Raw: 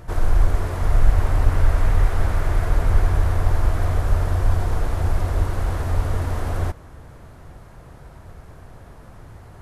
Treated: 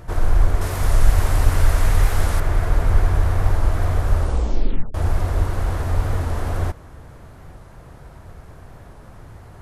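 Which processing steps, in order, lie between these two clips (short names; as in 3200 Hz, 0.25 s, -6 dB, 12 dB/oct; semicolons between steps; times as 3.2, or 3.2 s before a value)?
0.61–2.4 high shelf 3200 Hz +11.5 dB; 4.15 tape stop 0.80 s; record warp 45 rpm, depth 100 cents; gain +1 dB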